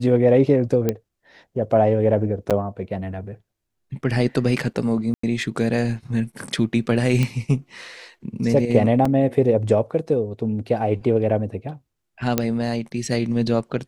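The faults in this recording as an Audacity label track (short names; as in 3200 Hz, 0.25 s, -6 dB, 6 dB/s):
0.890000	0.890000	pop -8 dBFS
2.500000	2.510000	gap 7.1 ms
5.140000	5.230000	gap 94 ms
7.230000	7.230000	pop -10 dBFS
9.050000	9.050000	gap 4.5 ms
12.380000	12.380000	pop -4 dBFS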